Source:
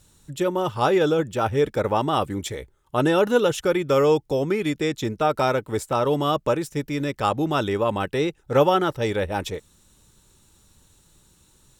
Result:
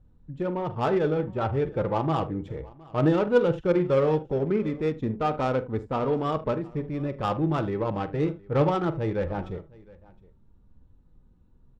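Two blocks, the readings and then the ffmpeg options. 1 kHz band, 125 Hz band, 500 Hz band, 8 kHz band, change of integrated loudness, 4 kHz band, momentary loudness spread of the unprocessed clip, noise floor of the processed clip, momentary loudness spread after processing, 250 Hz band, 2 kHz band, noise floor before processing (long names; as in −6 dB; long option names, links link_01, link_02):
−5.5 dB, +0.5 dB, −4.0 dB, below −20 dB, −4.0 dB, −12.5 dB, 9 LU, −58 dBFS, 9 LU, −2.0 dB, −8.0 dB, −59 dBFS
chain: -filter_complex "[0:a]lowshelf=frequency=190:gain=9.5,asplit=2[link_01][link_02];[link_02]aecho=0:1:45|78:0.282|0.178[link_03];[link_01][link_03]amix=inputs=2:normalize=0,flanger=delay=4:depth=2.4:regen=50:speed=0.18:shape=sinusoidal,adynamicsmooth=sensitivity=1:basefreq=1000,asplit=2[link_04][link_05];[link_05]aecho=0:1:714:0.0668[link_06];[link_04][link_06]amix=inputs=2:normalize=0,volume=-1.5dB"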